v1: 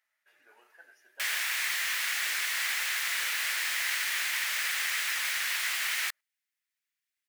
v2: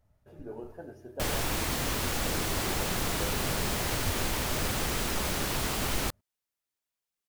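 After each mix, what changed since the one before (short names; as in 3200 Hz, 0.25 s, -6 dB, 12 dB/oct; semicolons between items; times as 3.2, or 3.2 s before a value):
master: remove resonant high-pass 1900 Hz, resonance Q 3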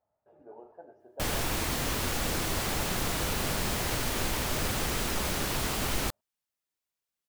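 speech: add band-pass 750 Hz, Q 1.9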